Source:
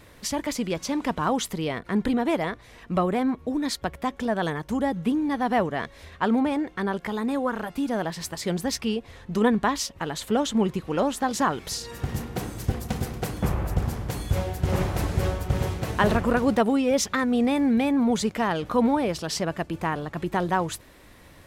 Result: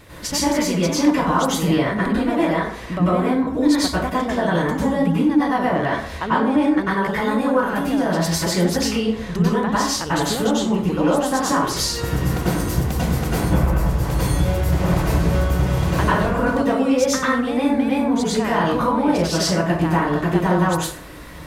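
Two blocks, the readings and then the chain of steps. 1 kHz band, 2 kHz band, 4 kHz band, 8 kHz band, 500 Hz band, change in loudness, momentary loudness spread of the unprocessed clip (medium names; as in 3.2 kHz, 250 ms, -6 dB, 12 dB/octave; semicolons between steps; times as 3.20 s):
+6.0 dB, +6.5 dB, +7.5 dB, +7.0 dB, +6.0 dB, +6.5 dB, 9 LU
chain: compression, threshold -28 dBFS, peak gain reduction 13 dB; plate-style reverb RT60 0.58 s, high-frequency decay 0.6×, pre-delay 85 ms, DRR -8.5 dB; trim +4 dB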